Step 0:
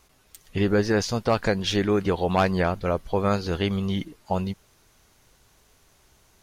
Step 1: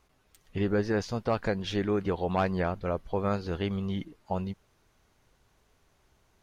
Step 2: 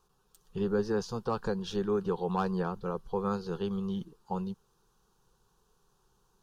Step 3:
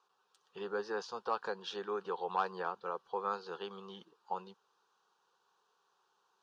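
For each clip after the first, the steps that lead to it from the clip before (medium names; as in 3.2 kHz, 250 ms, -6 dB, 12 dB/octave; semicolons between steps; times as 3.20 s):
treble shelf 3.9 kHz -10 dB; trim -5.5 dB
static phaser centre 420 Hz, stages 8
band-pass 680–4100 Hz; trim +1 dB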